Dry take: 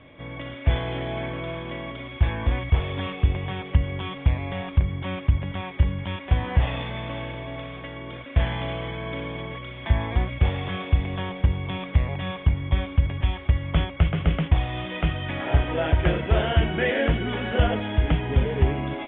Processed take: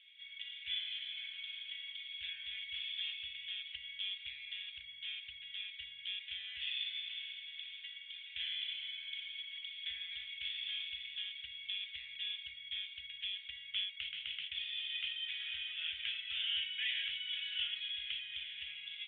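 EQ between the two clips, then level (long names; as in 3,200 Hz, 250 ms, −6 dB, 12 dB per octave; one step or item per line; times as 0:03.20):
inverse Chebyshev high-pass filter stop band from 1,000 Hz, stop band 60 dB
high-frequency loss of the air 150 metres
+8.0 dB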